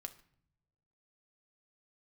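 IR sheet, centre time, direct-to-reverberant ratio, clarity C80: 5 ms, 8.0 dB, 19.0 dB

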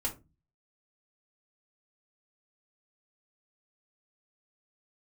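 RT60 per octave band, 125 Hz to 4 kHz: 0.60 s, 0.45 s, 0.30 s, 0.25 s, 0.20 s, 0.15 s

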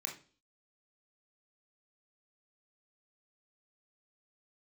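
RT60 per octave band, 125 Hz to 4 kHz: 0.45 s, 0.50 s, 0.45 s, 0.35 s, 0.35 s, 0.45 s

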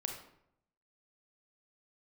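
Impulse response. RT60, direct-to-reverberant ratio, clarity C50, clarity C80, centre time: 0.75 s, 2.5 dB, 5.5 dB, 9.0 dB, 27 ms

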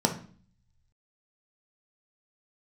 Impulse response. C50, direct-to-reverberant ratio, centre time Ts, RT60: 10.5 dB, 3.0 dB, 13 ms, 0.45 s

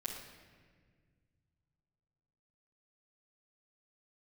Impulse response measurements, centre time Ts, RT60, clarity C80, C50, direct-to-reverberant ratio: 52 ms, 1.7 s, 5.5 dB, 3.5 dB, -8.0 dB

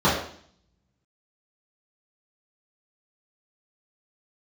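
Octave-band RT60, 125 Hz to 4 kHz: 0.85 s, 0.70 s, 0.55 s, 0.55 s, 0.55 s, 0.65 s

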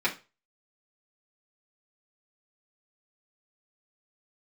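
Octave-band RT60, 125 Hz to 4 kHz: 0.35 s, 0.25 s, 0.30 s, 0.30 s, 0.30 s, 0.30 s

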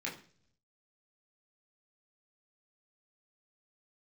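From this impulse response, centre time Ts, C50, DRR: 24 ms, 10.5 dB, -4.5 dB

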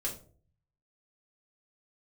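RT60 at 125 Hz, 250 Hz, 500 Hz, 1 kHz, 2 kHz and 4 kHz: 1.0 s, 0.60 s, 0.55 s, 0.40 s, 0.30 s, 0.25 s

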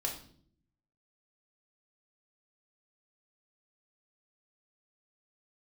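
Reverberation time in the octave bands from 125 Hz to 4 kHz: 1.1 s, 0.90 s, 0.65 s, 0.45 s, 0.45 s, 0.50 s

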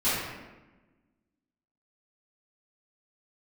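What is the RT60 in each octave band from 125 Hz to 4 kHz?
1.5 s, 1.7 s, 1.2 s, 1.1 s, 1.0 s, 0.75 s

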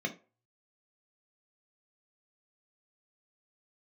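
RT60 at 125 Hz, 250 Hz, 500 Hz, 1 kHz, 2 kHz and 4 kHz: 0.45 s, 0.25 s, 0.35 s, 0.35 s, 0.25 s, 0.20 s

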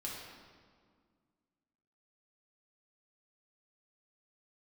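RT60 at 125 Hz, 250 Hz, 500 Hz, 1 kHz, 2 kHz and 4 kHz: 2.3 s, 2.5 s, 2.0 s, 1.8 s, 1.5 s, 1.3 s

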